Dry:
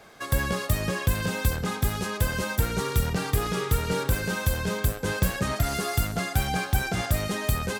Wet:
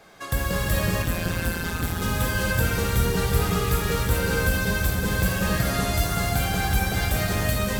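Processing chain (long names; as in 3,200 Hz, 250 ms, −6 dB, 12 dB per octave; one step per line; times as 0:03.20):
reverb whose tail is shaped and stops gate 470 ms flat, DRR −3 dB
0:01.02–0:02.02: amplitude modulation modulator 170 Hz, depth 60%
level −1.5 dB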